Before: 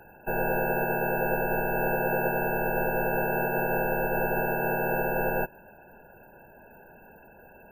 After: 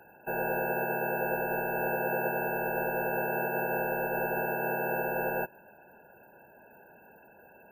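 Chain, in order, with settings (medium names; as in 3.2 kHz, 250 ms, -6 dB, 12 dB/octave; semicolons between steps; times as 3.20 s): high-pass 200 Hz 6 dB/octave; trim -3 dB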